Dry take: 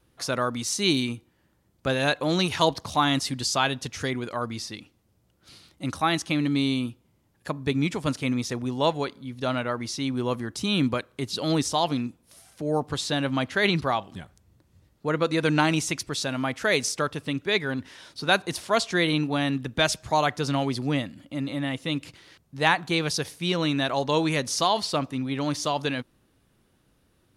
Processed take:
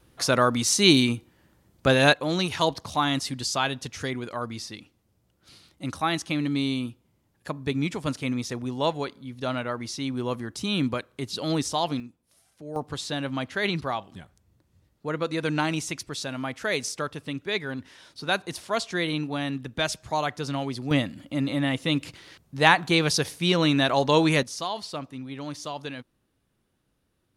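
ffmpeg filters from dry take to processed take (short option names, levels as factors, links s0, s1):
-af "asetnsamples=n=441:p=0,asendcmd='2.13 volume volume -2dB;12 volume volume -11dB;12.76 volume volume -4dB;20.91 volume volume 3.5dB;24.43 volume volume -8dB',volume=1.88"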